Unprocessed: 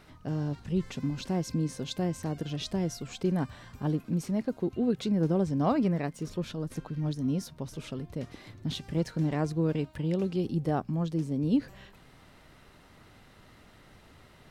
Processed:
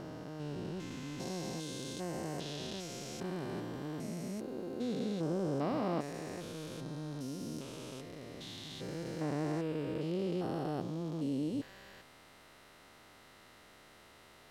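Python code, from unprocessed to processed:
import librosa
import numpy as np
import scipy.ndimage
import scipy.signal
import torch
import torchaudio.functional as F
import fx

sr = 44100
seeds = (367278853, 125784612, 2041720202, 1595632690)

y = fx.spec_steps(x, sr, hold_ms=400)
y = fx.bass_treble(y, sr, bass_db=-11, treble_db=3)
y = y * librosa.db_to_amplitude(1.0)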